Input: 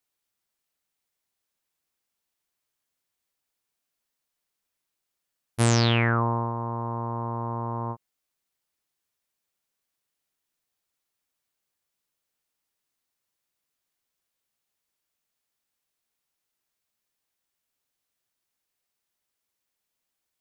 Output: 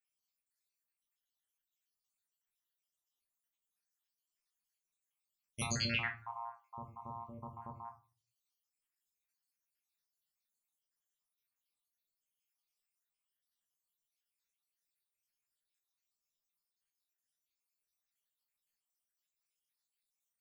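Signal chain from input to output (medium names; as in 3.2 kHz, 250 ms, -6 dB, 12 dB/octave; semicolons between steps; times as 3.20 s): random holes in the spectrogram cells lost 72%; amplifier tone stack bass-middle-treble 5-5-5; hum notches 60/120 Hz; simulated room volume 160 m³, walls furnished, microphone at 1.3 m; trim +2.5 dB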